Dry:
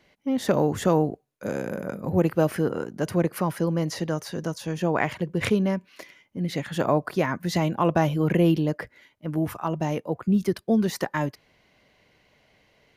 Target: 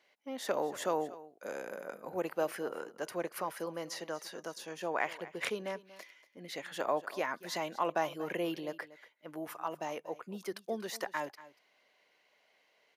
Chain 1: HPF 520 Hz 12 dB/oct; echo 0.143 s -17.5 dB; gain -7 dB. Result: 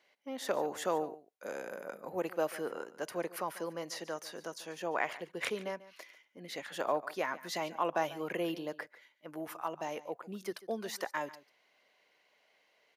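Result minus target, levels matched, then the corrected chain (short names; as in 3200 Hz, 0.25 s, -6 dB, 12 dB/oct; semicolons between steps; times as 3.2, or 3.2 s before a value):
echo 93 ms early
HPF 520 Hz 12 dB/oct; echo 0.236 s -17.5 dB; gain -7 dB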